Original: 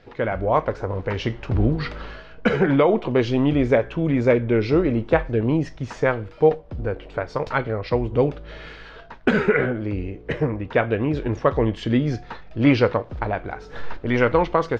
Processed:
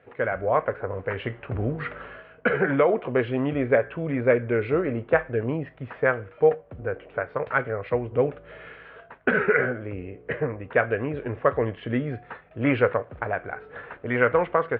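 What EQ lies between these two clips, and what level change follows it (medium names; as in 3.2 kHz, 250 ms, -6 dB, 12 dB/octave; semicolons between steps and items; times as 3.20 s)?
cabinet simulation 140–2900 Hz, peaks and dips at 150 Hz -4 dB, 210 Hz -9 dB, 320 Hz -9 dB, 900 Hz -6 dB; dynamic bell 1.6 kHz, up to +5 dB, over -42 dBFS, Q 2.5; distance through air 290 m; 0.0 dB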